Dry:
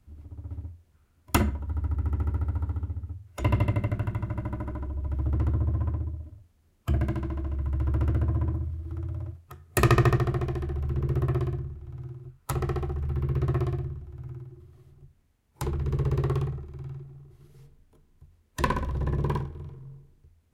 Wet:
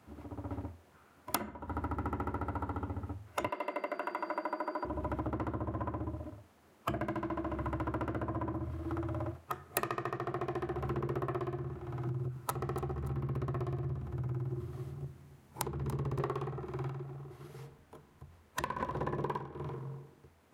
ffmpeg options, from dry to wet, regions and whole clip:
-filter_complex "[0:a]asettb=1/sr,asplit=3[s0][s1][s2];[s0]atrim=end=3.494[s3];[s1]atrim=start=3.49:end=4.85,asetpts=PTS-STARTPTS,afade=t=in:d=0.004:c=qsin,afade=t=out:st=1.356:d=0.004:c=qsin,highpass=f=330:w=0.5412,highpass=f=330:w=1.3066,aeval=exprs='val(0)+0.000708*sin(2*PI*4700*n/s)':c=same[s4];[s2]atrim=start=4.846[s5];[s3][s4]acrossfade=d=0.004:c1=hsin:c2=qsin[s6];[s6][s5]acrossfade=d=0.004:c1=qsin:c2=hsin,asettb=1/sr,asplit=3[s7][s8][s9];[s7]atrim=end=12.074[s10];[s8]atrim=start=12.07:end=16.2,asetpts=PTS-STARTPTS,afade=t=in:d=0.004:c=qsin,afade=t=out:st=4.126:d=0.004:c=qsin,bass=f=250:g=12,treble=f=4000:g=4,acompressor=threshold=0.0251:ratio=4:attack=3.2:release=140:knee=1:detection=peak,aecho=1:1:287|574|861:0.158|0.0491|0.0152,atrim=end_sample=182133[s11];[s9]atrim=start=16.196[s12];[s10][s11]acrossfade=d=0.004:c1=hsin:c2=qsin[s13];[s13][s12]acrossfade=d=0.004:c1=qsin:c2=hsin,asettb=1/sr,asplit=3[s14][s15][s16];[s14]atrim=end=16.894[s17];[s15]atrim=start=16.89:end=18.8,asetpts=PTS-STARTPTS,afade=t=in:d=0.004:c=qsin,afade=t=out:st=1.906:d=0.004:c=qsin,asubboost=boost=6:cutoff=140,acompressor=threshold=0.00794:ratio=2:attack=3.2:release=140:knee=1:detection=peak[s18];[s16]atrim=start=18.796[s19];[s17][s18]acrossfade=d=0.004:c1=hsin:c2=qsin[s20];[s20][s19]acrossfade=d=0.004:c1=qsin:c2=hsin,highpass=160,equalizer=f=900:t=o:w=2.8:g=10.5,acompressor=threshold=0.0158:ratio=20,volume=1.68"

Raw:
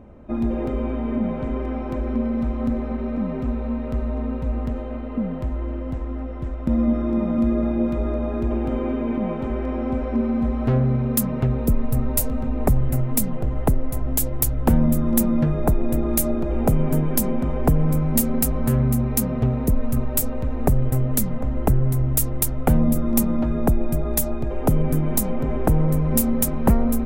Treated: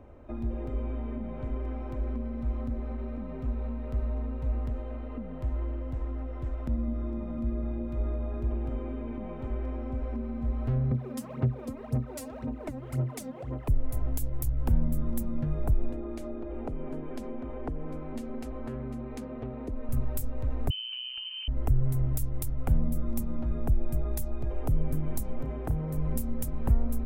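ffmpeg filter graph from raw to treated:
-filter_complex "[0:a]asettb=1/sr,asplit=3[s0][s1][s2];[s0]atrim=end=10.914[s3];[s1]atrim=start=10.91:end=13.68,asetpts=PTS-STARTPTS,afade=t=in:d=0.004:c=qsin,afade=t=out:st=2.766:d=0.004:c=qsin,highpass=200,lowpass=6900,asoftclip=type=hard:threshold=0.15,aphaser=in_gain=1:out_gain=1:delay=3.8:decay=0.75:speed=1.9:type=sinusoidal[s4];[s2]atrim=start=13.676[s5];[s3][s4]acrossfade=d=0.004:c1=hsin:c2=qsin[s6];[s6][s5]acrossfade=d=0.004:c1=qsin:c2=hsin,asettb=1/sr,asplit=3[s7][s8][s9];[s7]atrim=end=15.924[s10];[s8]atrim=start=15.92:end=19.89,asetpts=PTS-STARTPTS,afade=t=in:d=0.004:c=qsin,afade=t=out:st=3.966:d=0.004:c=qsin,lowpass=3600,lowshelf=f=200:t=q:w=1.5:g=-11[s11];[s9]atrim=start=19.886[s12];[s10][s11]acrossfade=d=0.004:c1=hsin:c2=qsin[s13];[s13][s12]acrossfade=d=0.004:c1=qsin:c2=hsin,asettb=1/sr,asplit=3[s14][s15][s16];[s14]atrim=end=20.704[s17];[s15]atrim=start=20.7:end=21.48,asetpts=PTS-STARTPTS,afade=t=in:d=0.004:c=qsin,afade=t=out:st=0.776:d=0.004:c=qsin,equalizer=f=1100:t=o:w=0.35:g=-13,lowpass=f=2600:t=q:w=0.5098,lowpass=f=2600:t=q:w=0.6013,lowpass=f=2600:t=q:w=0.9,lowpass=f=2600:t=q:w=2.563,afreqshift=-3100[s18];[s16]atrim=start=21.476[s19];[s17][s18]acrossfade=d=0.004:c1=hsin:c2=qsin[s20];[s20][s19]acrossfade=d=0.004:c1=qsin:c2=hsin,asettb=1/sr,asplit=3[s21][s22][s23];[s21]atrim=end=25.424[s24];[s22]atrim=start=25.42:end=25.97,asetpts=PTS-STARTPTS,afade=t=in:d=0.004:c=qsin,afade=t=out:st=0.546:d=0.004:c=qsin,highpass=f=93:p=1,asplit=2[s25][s26];[s26]adelay=34,volume=0.299[s27];[s25][s27]amix=inputs=2:normalize=0,atrim=end_sample=24255[s28];[s23]atrim=start=25.966[s29];[s24][s28]acrossfade=d=0.004:c1=hsin:c2=qsin[s30];[s30][s29]acrossfade=d=0.004:c1=qsin:c2=hsin,acrossover=split=210[s31][s32];[s32]acompressor=threshold=0.0141:ratio=3[s33];[s31][s33]amix=inputs=2:normalize=0,equalizer=f=190:w=2.5:g=-12,volume=0.631"

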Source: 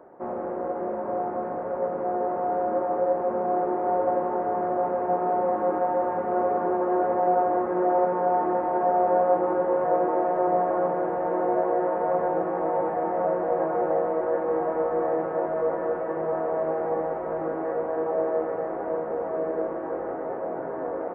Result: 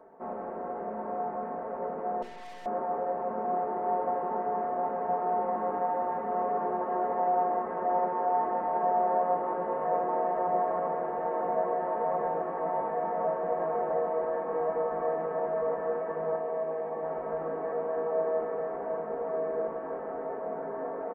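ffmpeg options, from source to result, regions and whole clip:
-filter_complex "[0:a]asettb=1/sr,asplit=3[s0][s1][s2];[s0]atrim=end=2.224[s3];[s1]atrim=start=2.22:end=2.66,asetpts=PTS-STARTPTS,afade=t=in:d=0.004:c=qsin,afade=t=out:st=0.436:d=0.004:c=qsin,highshelf=f=2100:g=-10,aeval=exprs='(tanh(100*val(0)+0.65)-tanh(0.65))/100':c=same[s4];[s2]atrim=start=2.656[s5];[s3][s4]acrossfade=d=0.004:c1=hsin:c2=qsin[s6];[s6][s5]acrossfade=d=0.004:c1=qsin:c2=hsin,asettb=1/sr,asplit=3[s7][s8][s9];[s7]atrim=end=16.364[s10];[s8]atrim=start=16.36:end=17.03,asetpts=PTS-STARTPTS,afade=t=in:d=0.004:c=qsin,afade=t=out:st=0.666:d=0.004:c=qsin,highpass=f=210:p=1,equalizer=f=1100:t=o:w=2.7:g=-3,bandreject=f=1400:w=7.3[s11];[s9]atrim=start=17.026[s12];[s10][s11]acrossfade=d=0.004:c1=hsin:c2=qsin[s13];[s13][s12]acrossfade=d=0.004:c1=qsin:c2=hsin,bandreject=f=60:t=h:w=6,bandreject=f=120:t=h:w=6,bandreject=f=180:t=h:w=6,bandreject=f=240:t=h:w=6,bandreject=f=300:t=h:w=6,bandreject=f=360:t=h:w=6,bandreject=f=420:t=h:w=6,bandreject=f=480:t=h:w=6,aecho=1:1:4.5:0.66,volume=0.531"

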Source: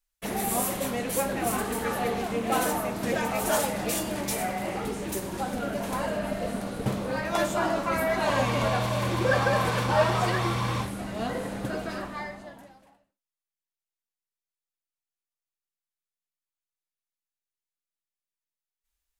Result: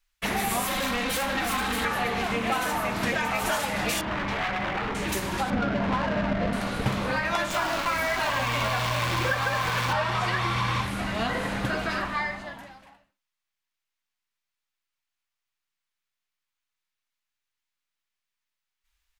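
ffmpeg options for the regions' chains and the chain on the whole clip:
-filter_complex "[0:a]asettb=1/sr,asplit=3[s0][s1][s2];[s0]atrim=end=0.674[s3];[s1]atrim=start=0.67:end=1.85,asetpts=PTS-STARTPTS,afade=t=in:d=0.004:c=qsin,afade=t=out:st=1.176:d=0.004:c=qsin,equalizer=f=3800:t=o:w=0.21:g=7.5,aecho=1:1:3.8:0.92,atrim=end_sample=52038,asoftclip=type=hard:threshold=0.0398[s4];[s2]atrim=start=1.846[s5];[s3][s4]acrossfade=d=0.004:c1=hsin:c2=qsin[s6];[s6][s5]acrossfade=d=0.004:c1=qsin:c2=hsin,asettb=1/sr,asplit=3[s7][s8][s9];[s7]atrim=end=4.014[s10];[s8]atrim=start=4.01:end=4.95,asetpts=PTS-STARTPTS,afade=t=in:d=0.004:c=qsin,afade=t=out:st=0.936:d=0.004:c=qsin,lowpass=1900,aeval=exprs='0.0355*(abs(mod(val(0)/0.0355+3,4)-2)-1)':c=same[s11];[s9]atrim=start=4.946[s12];[s10][s11]acrossfade=d=0.004:c1=hsin:c2=qsin[s13];[s13][s12]acrossfade=d=0.004:c1=qsin:c2=hsin,asettb=1/sr,asplit=3[s14][s15][s16];[s14]atrim=end=5.504[s17];[s15]atrim=start=5.5:end=6.53,asetpts=PTS-STARTPTS,afade=t=in:d=0.004:c=qsin,afade=t=out:st=1.026:d=0.004:c=qsin,aeval=exprs='val(0)+0.5*0.00668*sgn(val(0))':c=same,equalizer=f=160:t=o:w=2.7:g=6,adynamicsmooth=sensitivity=4:basefreq=660[s18];[s16]atrim=start=6.526[s19];[s17][s18]acrossfade=d=0.004:c1=hsin:c2=qsin[s20];[s20][s19]acrossfade=d=0.004:c1=qsin:c2=hsin,asettb=1/sr,asplit=3[s21][s22][s23];[s21]atrim=end=7.504[s24];[s22]atrim=start=7.5:end=9.93,asetpts=PTS-STARTPTS,afade=t=in:d=0.004:c=qsin,afade=t=out:st=2.426:d=0.004:c=qsin,bandreject=f=50:t=h:w=6,bandreject=f=100:t=h:w=6,bandreject=f=150:t=h:w=6,bandreject=f=200:t=h:w=6,bandreject=f=250:t=h:w=6,bandreject=f=300:t=h:w=6,bandreject=f=350:t=h:w=6,bandreject=f=400:t=h:w=6,acrusher=bits=6:dc=4:mix=0:aa=0.000001[s25];[s23]atrim=start=9.926[s26];[s24][s25]acrossfade=d=0.004:c1=hsin:c2=qsin[s27];[s27][s26]acrossfade=d=0.004:c1=qsin:c2=hsin,firequalizer=gain_entry='entry(490,0);entry(1000,9);entry(2200,12);entry(9000,1)':delay=0.05:min_phase=1,acompressor=threshold=0.0631:ratio=6,lowshelf=f=160:g=8.5"

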